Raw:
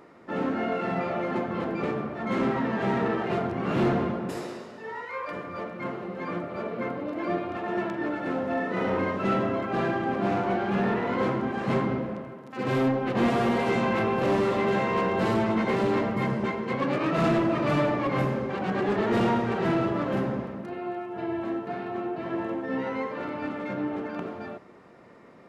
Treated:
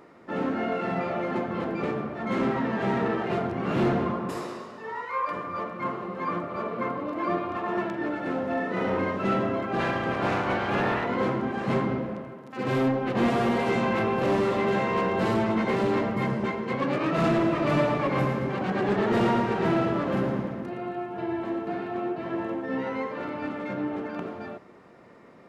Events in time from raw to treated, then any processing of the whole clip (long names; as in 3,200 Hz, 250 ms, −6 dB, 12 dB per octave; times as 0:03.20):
0:04.06–0:07.82: parametric band 1,100 Hz +10.5 dB 0.29 octaves
0:09.79–0:11.04: ceiling on every frequency bin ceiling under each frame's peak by 14 dB
0:17.28–0:22.13: echo with a time of its own for lows and highs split 330 Hz, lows 231 ms, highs 115 ms, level −8 dB